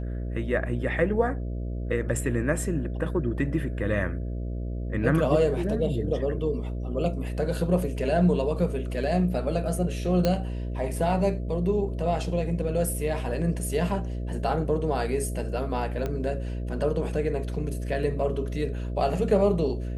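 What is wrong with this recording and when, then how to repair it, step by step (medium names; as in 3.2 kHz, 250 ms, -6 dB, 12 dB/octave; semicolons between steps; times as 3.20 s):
buzz 60 Hz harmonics 11 -31 dBFS
10.25 s: pop -11 dBFS
16.06 s: pop -18 dBFS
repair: de-click; de-hum 60 Hz, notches 11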